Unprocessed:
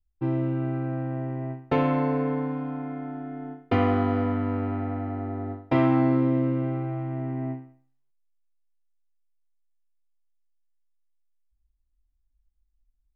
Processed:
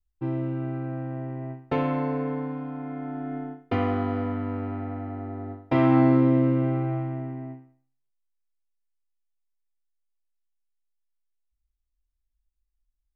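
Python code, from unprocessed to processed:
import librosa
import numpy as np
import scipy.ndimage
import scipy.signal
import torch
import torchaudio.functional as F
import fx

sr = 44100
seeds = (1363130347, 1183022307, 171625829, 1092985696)

y = fx.gain(x, sr, db=fx.line((2.73, -2.5), (3.36, 4.0), (3.65, -3.0), (5.57, -3.0), (5.97, 3.0), (6.95, 3.0), (7.49, -7.0)))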